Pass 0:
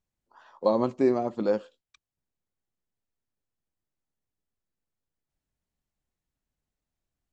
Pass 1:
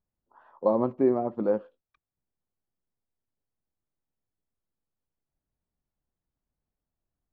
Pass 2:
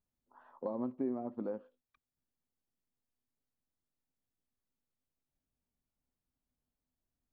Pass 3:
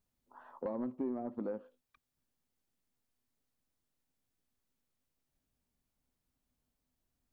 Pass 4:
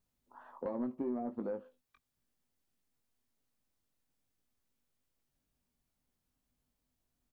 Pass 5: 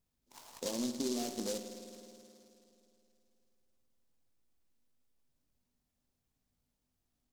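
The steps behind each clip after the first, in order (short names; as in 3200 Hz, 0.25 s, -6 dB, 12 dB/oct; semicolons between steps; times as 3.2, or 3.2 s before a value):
LPF 1300 Hz 12 dB/oct
compressor 2.5:1, threshold -37 dBFS, peak gain reduction 13 dB; bell 250 Hz +9.5 dB 0.2 oct; gain -4 dB
soft clip -27 dBFS, distortion -21 dB; compressor 1.5:1, threshold -47 dBFS, peak gain reduction 5.5 dB; gain +5 dB
doubler 21 ms -8 dB
spring tank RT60 2.9 s, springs 53 ms, chirp 65 ms, DRR 6.5 dB; noise-modulated delay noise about 5300 Hz, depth 0.17 ms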